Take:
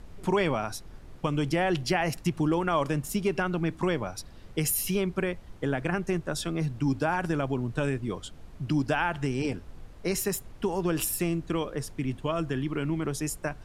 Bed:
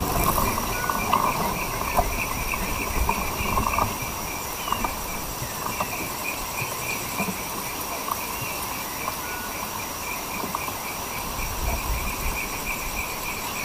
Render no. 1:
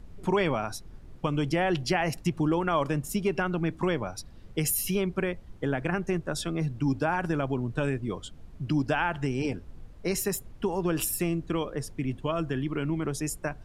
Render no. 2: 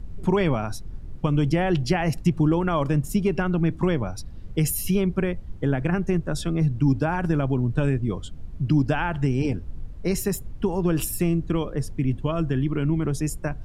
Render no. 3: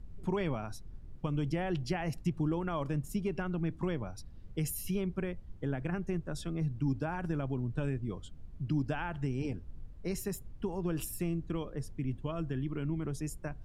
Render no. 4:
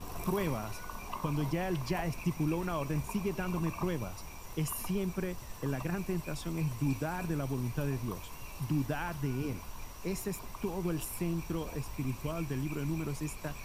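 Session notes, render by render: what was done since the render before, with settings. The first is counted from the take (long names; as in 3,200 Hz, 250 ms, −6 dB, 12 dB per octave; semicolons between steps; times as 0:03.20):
broadband denoise 6 dB, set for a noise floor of −48 dBFS
low-shelf EQ 250 Hz +11.5 dB
level −11.5 dB
mix in bed −19.5 dB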